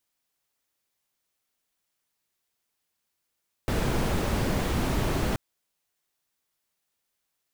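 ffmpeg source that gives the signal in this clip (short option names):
-f lavfi -i "anoisesrc=c=brown:a=0.248:d=1.68:r=44100:seed=1"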